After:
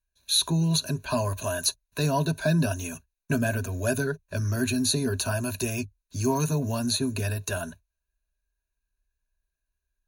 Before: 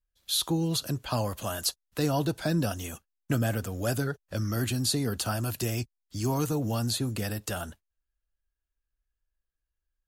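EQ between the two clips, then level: rippled EQ curve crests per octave 1.5, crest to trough 15 dB; 0.0 dB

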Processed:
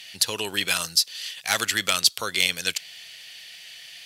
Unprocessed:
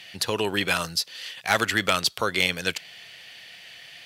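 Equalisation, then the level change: treble shelf 2.6 kHz +9 dB; peaking EQ 8.1 kHz +6.5 dB 2.8 oct; -7.0 dB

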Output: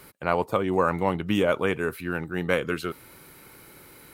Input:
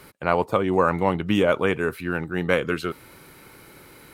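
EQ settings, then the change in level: treble shelf 10 kHz +8 dB; -3.0 dB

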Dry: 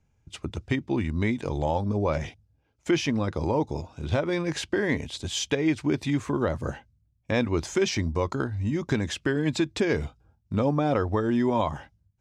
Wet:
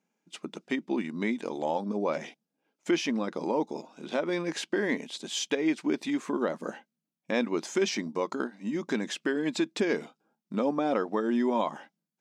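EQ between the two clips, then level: brick-wall FIR high-pass 170 Hz; -2.5 dB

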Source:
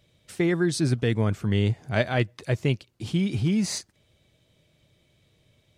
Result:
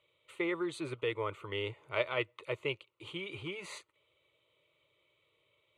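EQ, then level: band-pass filter 980 Hz, Q 0.67; tilt shelf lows -3.5 dB; static phaser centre 1.1 kHz, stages 8; 0.0 dB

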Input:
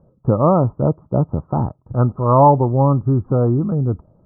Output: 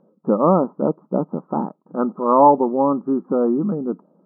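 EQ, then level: brick-wall FIR high-pass 170 Hz; distance through air 260 m; peaking EQ 660 Hz -4.5 dB 0.29 oct; +1.5 dB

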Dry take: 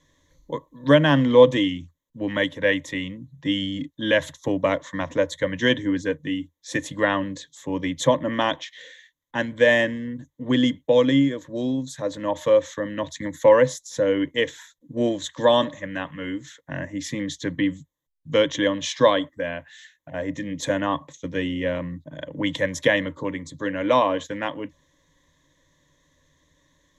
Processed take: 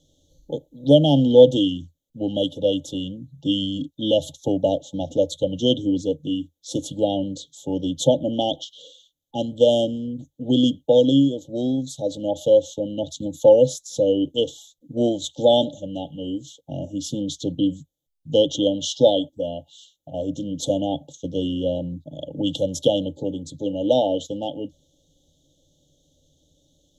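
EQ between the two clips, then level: brick-wall FIR band-stop 870–2800 Hz; +2.0 dB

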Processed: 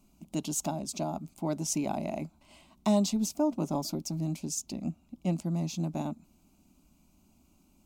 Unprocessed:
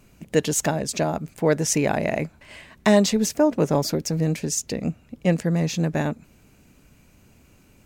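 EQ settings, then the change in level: peaking EQ 140 Hz +8 dB 0.9 oct; static phaser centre 470 Hz, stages 6; -8.0 dB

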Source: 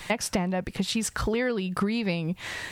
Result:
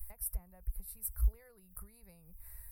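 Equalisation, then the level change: inverse Chebyshev band-stop 110–7200 Hz, stop band 40 dB; +9.0 dB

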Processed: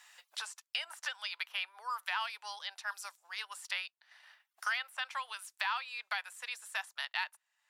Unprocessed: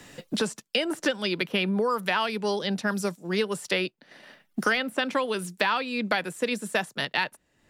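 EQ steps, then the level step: steep high-pass 840 Hz 36 dB/octave; -8.5 dB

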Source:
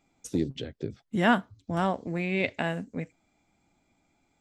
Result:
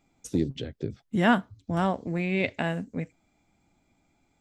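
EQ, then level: bass shelf 200 Hz +4.5 dB; 0.0 dB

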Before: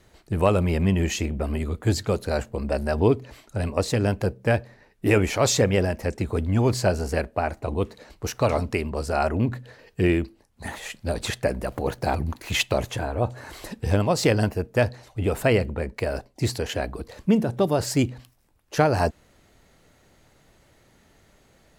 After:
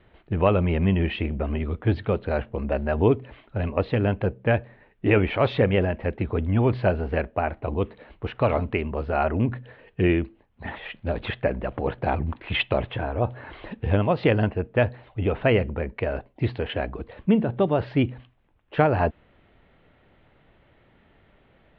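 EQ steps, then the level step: steep low-pass 3.4 kHz 48 dB/octave; 0.0 dB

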